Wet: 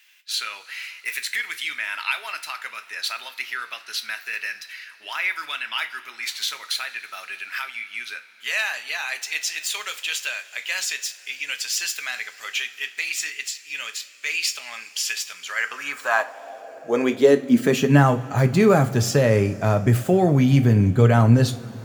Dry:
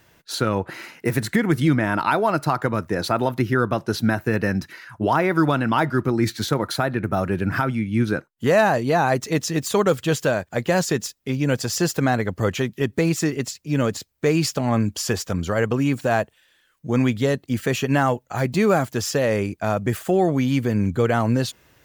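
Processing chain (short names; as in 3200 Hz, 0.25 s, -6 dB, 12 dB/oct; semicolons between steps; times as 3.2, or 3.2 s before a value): two-slope reverb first 0.3 s, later 4.8 s, from -21 dB, DRR 7 dB; high-pass sweep 2500 Hz -> 110 Hz, 15.33–18.34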